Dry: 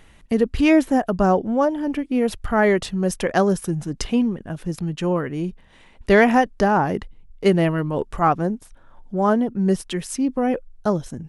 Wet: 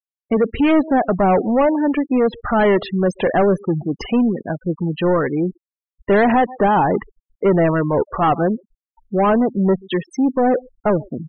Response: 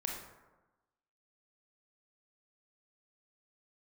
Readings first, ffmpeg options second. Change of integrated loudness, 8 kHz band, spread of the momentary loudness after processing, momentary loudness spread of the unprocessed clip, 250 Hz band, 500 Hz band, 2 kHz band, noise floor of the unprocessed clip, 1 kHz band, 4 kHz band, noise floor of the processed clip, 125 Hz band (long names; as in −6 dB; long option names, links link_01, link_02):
+3.0 dB, below −10 dB, 7 LU, 11 LU, +2.5 dB, +3.5 dB, 0.0 dB, −51 dBFS, +3.5 dB, −0.5 dB, below −85 dBFS, +2.0 dB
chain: -filter_complex "[0:a]asplit=2[link_01][link_02];[link_02]adelay=134.1,volume=-29dB,highshelf=frequency=4000:gain=-3.02[link_03];[link_01][link_03]amix=inputs=2:normalize=0,asplit=2[link_04][link_05];[link_05]highpass=frequency=720:poles=1,volume=25dB,asoftclip=type=tanh:threshold=-3.5dB[link_06];[link_04][link_06]amix=inputs=2:normalize=0,lowpass=frequency=1100:poles=1,volume=-6dB,afftfilt=real='re*gte(hypot(re,im),0.1)':imag='im*gte(hypot(re,im),0.1)':win_size=1024:overlap=0.75,volume=-2.5dB"